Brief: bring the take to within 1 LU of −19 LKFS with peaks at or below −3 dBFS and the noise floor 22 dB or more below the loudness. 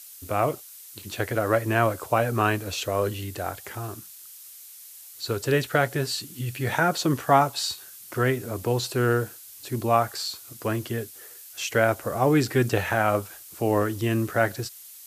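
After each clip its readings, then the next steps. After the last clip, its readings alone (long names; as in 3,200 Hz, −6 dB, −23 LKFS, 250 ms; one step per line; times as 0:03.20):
background noise floor −46 dBFS; target noise floor −48 dBFS; integrated loudness −25.5 LKFS; sample peak −5.0 dBFS; target loudness −19.0 LKFS
→ noise reduction from a noise print 6 dB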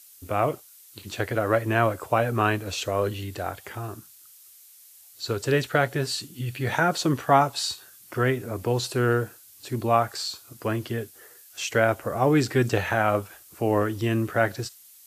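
background noise floor −51 dBFS; integrated loudness −25.5 LKFS; sample peak −5.0 dBFS; target loudness −19.0 LKFS
→ level +6.5 dB
brickwall limiter −3 dBFS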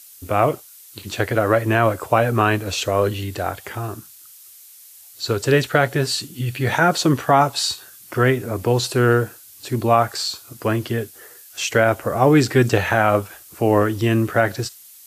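integrated loudness −19.5 LKFS; sample peak −3.0 dBFS; background noise floor −45 dBFS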